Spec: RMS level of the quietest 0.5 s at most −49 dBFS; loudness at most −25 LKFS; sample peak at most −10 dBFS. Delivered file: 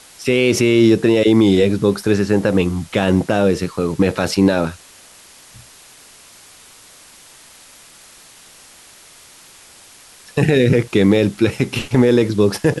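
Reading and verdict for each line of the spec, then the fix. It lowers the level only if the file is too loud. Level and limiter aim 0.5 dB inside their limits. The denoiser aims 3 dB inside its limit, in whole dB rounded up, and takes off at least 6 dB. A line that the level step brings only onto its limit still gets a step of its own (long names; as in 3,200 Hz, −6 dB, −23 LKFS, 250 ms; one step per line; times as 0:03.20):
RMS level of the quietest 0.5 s −44 dBFS: out of spec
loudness −16.0 LKFS: out of spec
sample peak −3.5 dBFS: out of spec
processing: level −9.5 dB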